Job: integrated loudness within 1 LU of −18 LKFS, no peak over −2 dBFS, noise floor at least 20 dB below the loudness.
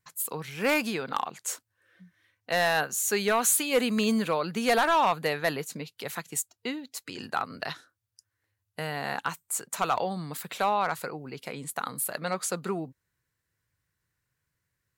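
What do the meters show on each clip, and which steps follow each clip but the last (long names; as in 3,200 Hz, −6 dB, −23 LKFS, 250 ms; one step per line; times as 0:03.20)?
share of clipped samples 0.4%; peaks flattened at −16.5 dBFS; integrated loudness −28.5 LKFS; sample peak −16.5 dBFS; target loudness −18.0 LKFS
→ clipped peaks rebuilt −16.5 dBFS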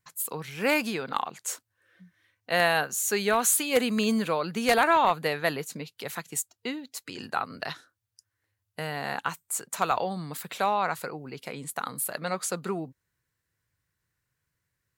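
share of clipped samples 0.0%; integrated loudness −28.0 LKFS; sample peak −7.5 dBFS; target loudness −18.0 LKFS
→ level +10 dB
brickwall limiter −2 dBFS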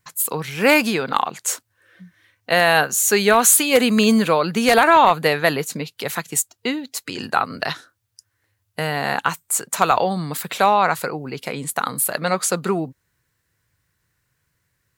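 integrated loudness −18.5 LKFS; sample peak −2.0 dBFS; background noise floor −72 dBFS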